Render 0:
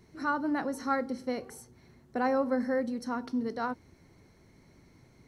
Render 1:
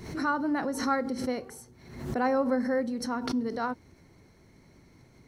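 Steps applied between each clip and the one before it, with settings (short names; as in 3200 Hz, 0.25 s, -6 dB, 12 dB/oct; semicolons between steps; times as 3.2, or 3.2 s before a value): backwards sustainer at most 72 dB/s; gain +1.5 dB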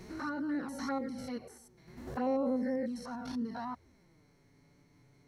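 stepped spectrum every 0.1 s; envelope flanger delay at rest 7.7 ms, full sweep at -24.5 dBFS; gain -3 dB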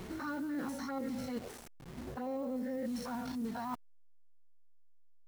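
level-crossing sampler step -50 dBFS; reverse; compressor 6:1, threshold -41 dBFS, peak gain reduction 13 dB; reverse; gain +5.5 dB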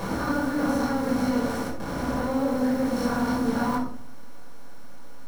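per-bin compression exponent 0.4; shoebox room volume 650 m³, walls furnished, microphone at 5.4 m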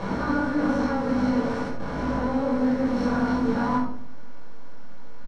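air absorption 130 m; on a send: early reflections 20 ms -5.5 dB, 69 ms -10.5 dB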